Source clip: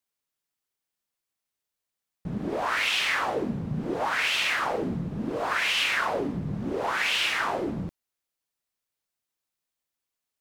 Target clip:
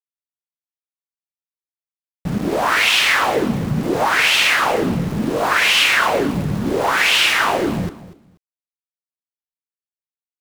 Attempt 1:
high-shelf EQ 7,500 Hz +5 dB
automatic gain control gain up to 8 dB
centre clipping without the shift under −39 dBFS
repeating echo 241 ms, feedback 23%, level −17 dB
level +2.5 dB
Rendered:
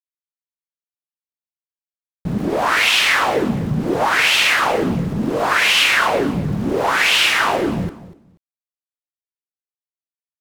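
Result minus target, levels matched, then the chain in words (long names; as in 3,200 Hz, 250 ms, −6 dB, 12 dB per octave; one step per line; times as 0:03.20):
centre clipping without the shift: distortion −13 dB
high-shelf EQ 7,500 Hz +5 dB
automatic gain control gain up to 8 dB
centre clipping without the shift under −30 dBFS
repeating echo 241 ms, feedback 23%, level −17 dB
level +2.5 dB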